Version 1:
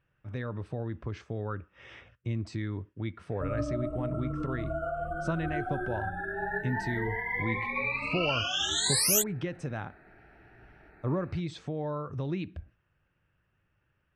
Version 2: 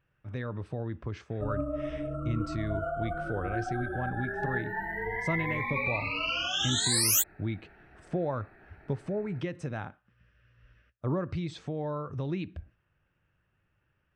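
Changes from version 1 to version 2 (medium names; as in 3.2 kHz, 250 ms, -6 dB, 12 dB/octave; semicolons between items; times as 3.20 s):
background: entry -2.00 s; master: remove brick-wall FIR low-pass 14 kHz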